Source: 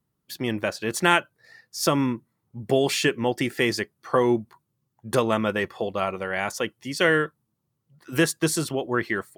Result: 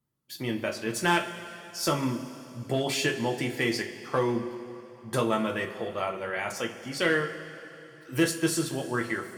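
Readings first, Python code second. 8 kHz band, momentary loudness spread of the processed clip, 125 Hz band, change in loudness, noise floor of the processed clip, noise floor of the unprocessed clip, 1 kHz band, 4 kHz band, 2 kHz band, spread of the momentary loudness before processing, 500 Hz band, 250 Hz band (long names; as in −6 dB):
−3.5 dB, 15 LU, −3.0 dB, −4.5 dB, −50 dBFS, −78 dBFS, −4.5 dB, −3.5 dB, −4.5 dB, 10 LU, −5.0 dB, −3.5 dB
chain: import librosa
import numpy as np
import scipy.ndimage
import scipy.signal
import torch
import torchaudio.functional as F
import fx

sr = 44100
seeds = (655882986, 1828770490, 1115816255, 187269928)

y = fx.clip_asym(x, sr, top_db=-14.5, bottom_db=-6.0)
y = fx.rev_double_slope(y, sr, seeds[0], early_s=0.24, late_s=3.0, knee_db=-18, drr_db=1.0)
y = F.gain(torch.from_numpy(y), -6.5).numpy()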